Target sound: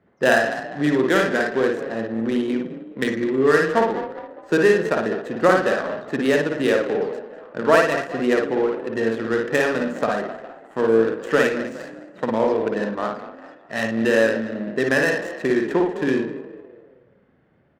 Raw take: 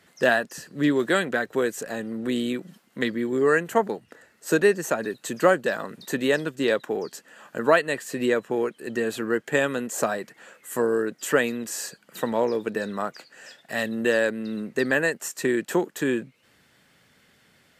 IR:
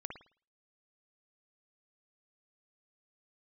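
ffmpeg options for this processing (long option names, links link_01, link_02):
-filter_complex "[0:a]asplit=6[link_01][link_02][link_03][link_04][link_05][link_06];[link_02]adelay=205,afreqshift=32,volume=-12dB[link_07];[link_03]adelay=410,afreqshift=64,volume=-18.7dB[link_08];[link_04]adelay=615,afreqshift=96,volume=-25.5dB[link_09];[link_05]adelay=820,afreqshift=128,volume=-32.2dB[link_10];[link_06]adelay=1025,afreqshift=160,volume=-39dB[link_11];[link_01][link_07][link_08][link_09][link_10][link_11]amix=inputs=6:normalize=0[link_12];[1:a]atrim=start_sample=2205[link_13];[link_12][link_13]afir=irnorm=-1:irlink=0,adynamicsmooth=sensitivity=4.5:basefreq=930,volume=6dB"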